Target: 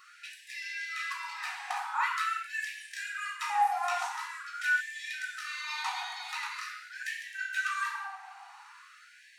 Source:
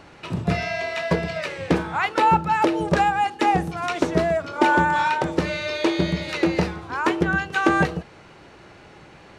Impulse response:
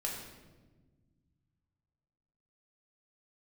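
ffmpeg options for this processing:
-filter_complex "[0:a]equalizer=f=2800:w=0.36:g=-14[s0];[1:a]atrim=start_sample=2205[s1];[s0][s1]afir=irnorm=-1:irlink=0,asplit=2[s2][s3];[s3]acompressor=threshold=0.0447:ratio=16,volume=1.26[s4];[s2][s4]amix=inputs=2:normalize=0,afftfilt=real='re*gte(b*sr/1024,690*pow(1600/690,0.5+0.5*sin(2*PI*0.45*pts/sr)))':imag='im*gte(b*sr/1024,690*pow(1600/690,0.5+0.5*sin(2*PI*0.45*pts/sr)))':win_size=1024:overlap=0.75"

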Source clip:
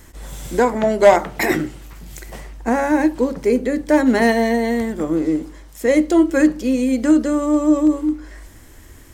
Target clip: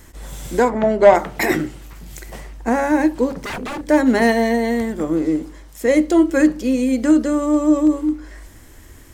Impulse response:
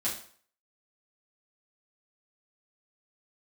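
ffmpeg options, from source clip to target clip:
-filter_complex "[0:a]asplit=3[s0][s1][s2];[s0]afade=t=out:st=0.68:d=0.02[s3];[s1]aemphasis=mode=reproduction:type=75fm,afade=t=in:st=0.68:d=0.02,afade=t=out:st=1.14:d=0.02[s4];[s2]afade=t=in:st=1.14:d=0.02[s5];[s3][s4][s5]amix=inputs=3:normalize=0,asettb=1/sr,asplit=3[s6][s7][s8];[s6]atrim=end=3.304[s9];[s7]atrim=start=3.3:end=3.86,asetpts=PTS-STARTPTS,afade=t=in:d=0.004:c=qsin,afade=t=out:st=0.556:d=0.004:c=qsin,aeval=exprs='0.0794*(abs(mod(val(0)/0.0794+3,4)-2)-1)':c=same[s10];[s8]atrim=start=3.856[s11];[s9][s10]acrossfade=d=0.004:c1=hsin:c2=qsin[s12];[s12][s11]acrossfade=d=0.004:c1=qsin:c2=hsin"

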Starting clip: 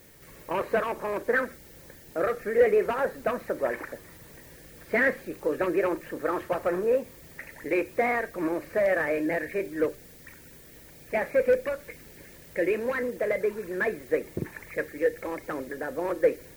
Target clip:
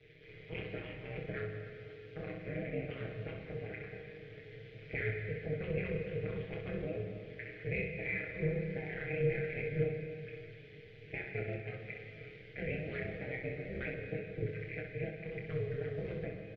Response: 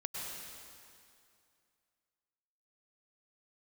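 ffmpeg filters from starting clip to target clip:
-filter_complex "[0:a]lowpass=f=4300:w=0.5412,lowpass=f=4300:w=1.3066,aecho=1:1:6.4:0.82,alimiter=limit=0.15:level=0:latency=1:release=418,acrossover=split=230|3000[s0][s1][s2];[s1]acompressor=threshold=0.00794:ratio=1.5[s3];[s0][s3][s2]amix=inputs=3:normalize=0,tremolo=f=130:d=0.889,asplit=3[s4][s5][s6];[s4]bandpass=f=270:t=q:w=8,volume=1[s7];[s5]bandpass=f=2290:t=q:w=8,volume=0.501[s8];[s6]bandpass=f=3010:t=q:w=8,volume=0.355[s9];[s7][s8][s9]amix=inputs=3:normalize=0,aeval=exprs='val(0)*sin(2*PI*160*n/s)':c=same,aecho=1:1:26|64:0.531|0.531,asplit=2[s10][s11];[1:a]atrim=start_sample=2205[s12];[s11][s12]afir=irnorm=-1:irlink=0,volume=0.891[s13];[s10][s13]amix=inputs=2:normalize=0,volume=2.51"

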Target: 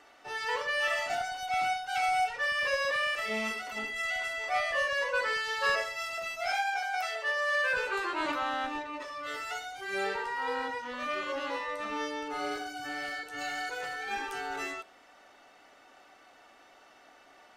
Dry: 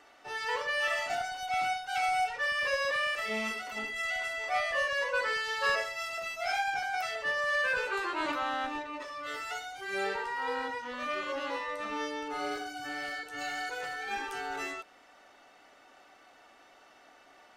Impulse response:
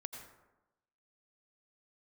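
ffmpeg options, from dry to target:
-filter_complex "[0:a]asettb=1/sr,asplit=3[s0][s1][s2];[s0]atrim=end=6.524[s3];[s1]atrim=start=6.52:end=7.73,asetpts=PTS-STARTPTS,afade=t=in:d=0.004:c=qsin,afade=t=out:st=1.206:d=0.004:c=qsin,highpass=f=410:w=0.5412,highpass=f=410:w=1.3066[s4];[s2]atrim=start=7.726[s5];[s3][s4]acrossfade=d=0.004:c1=hsin:c2=qsin[s6];[s6][s5]acrossfade=d=0.004:c1=qsin:c2=hsin[s7];[1:a]atrim=start_sample=2205,atrim=end_sample=3528,asetrate=30429,aresample=44100[s8];[s7][s8]afir=irnorm=-1:irlink=0,volume=1.41"

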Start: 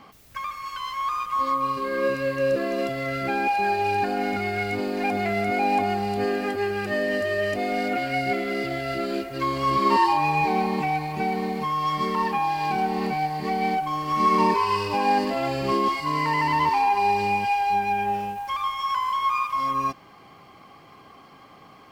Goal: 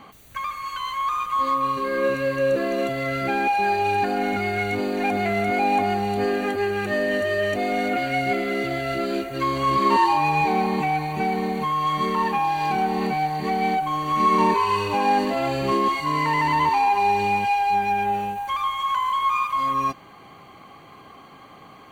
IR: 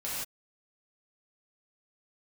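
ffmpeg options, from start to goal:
-filter_complex "[0:a]asplit=2[s0][s1];[s1]asoftclip=type=tanh:threshold=0.0501,volume=0.447[s2];[s0][s2]amix=inputs=2:normalize=0,asuperstop=centerf=5200:order=20:qfactor=6.3"

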